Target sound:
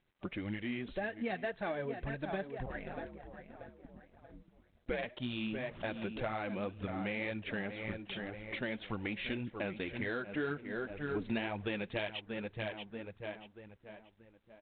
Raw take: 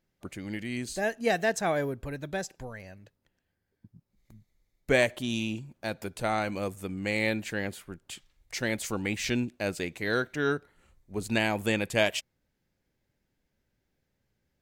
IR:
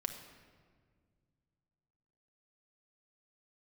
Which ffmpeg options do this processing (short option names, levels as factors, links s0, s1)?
-filter_complex "[0:a]asettb=1/sr,asplit=3[s0][s1][s2];[s0]atrim=end=5.594[s3];[s1]atrim=start=5.59:end=6.08,asetpts=PTS-STARTPTS,afade=t=in:d=0.004:c=qsin,afade=t=out:st=0.486:d=0.004:c=qsin,aeval=exprs='val(0)+0.5*0.00562*sgn(val(0))':c=same[s4];[s2]atrim=start=6.076[s5];[s3][s4]acrossfade=d=0.004:c1=hsin:c2=qsin[s6];[s6][s5]acrossfade=d=0.004:c1=qsin:c2=hsin,asplit=2[s7][s8];[s8]adelay=633,lowpass=f=2600:p=1,volume=0.266,asplit=2[s9][s10];[s10]adelay=633,lowpass=f=2600:p=1,volume=0.42,asplit=2[s11][s12];[s12]adelay=633,lowpass=f=2600:p=1,volume=0.42,asplit=2[s13][s14];[s14]adelay=633,lowpass=f=2600:p=1,volume=0.42[s15];[s9][s11][s13][s15]amix=inputs=4:normalize=0[s16];[s7][s16]amix=inputs=2:normalize=0,asplit=3[s17][s18][s19];[s17]afade=t=out:st=2.65:d=0.02[s20];[s18]aeval=exprs='val(0)*sin(2*PI*72*n/s)':c=same,afade=t=in:st=2.65:d=0.02,afade=t=out:st=5.04:d=0.02[s21];[s19]afade=t=in:st=5.04:d=0.02[s22];[s20][s21][s22]amix=inputs=3:normalize=0,flanger=delay=0.5:depth=5.3:regen=26:speed=1.9:shape=triangular,acompressor=threshold=0.00891:ratio=6,asettb=1/sr,asplit=3[s23][s24][s25];[s23]atrim=end=10.324[s26];[s24]atrim=start=10.32:end=11.48,asetpts=PTS-STARTPTS,afade=t=in:d=0.004:c=qsin,afade=t=out:st=1.156:d=0.004:c=qsin,equalizer=f=280:w=0.69:g=2.5[s27];[s25]atrim=start=11.476[s28];[s26][s27]acrossfade=d=0.004:c1=hsin:c2=qsin[s29];[s29][s28]acrossfade=d=0.004:c1=qsin:c2=hsin,volume=2" -ar 8000 -c:a adpcm_g726 -b:a 32k